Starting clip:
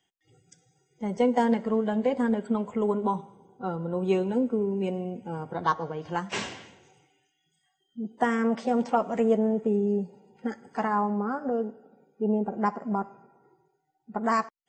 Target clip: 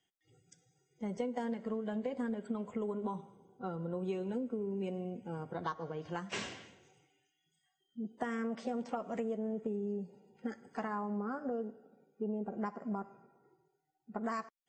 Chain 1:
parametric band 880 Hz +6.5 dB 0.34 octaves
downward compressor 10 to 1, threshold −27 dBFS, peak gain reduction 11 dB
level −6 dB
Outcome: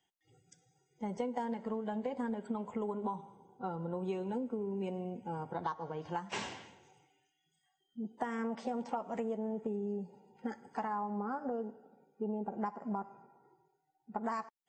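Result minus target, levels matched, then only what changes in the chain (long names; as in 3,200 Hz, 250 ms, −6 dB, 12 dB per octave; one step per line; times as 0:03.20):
1,000 Hz band +3.5 dB
change: parametric band 880 Hz −5 dB 0.34 octaves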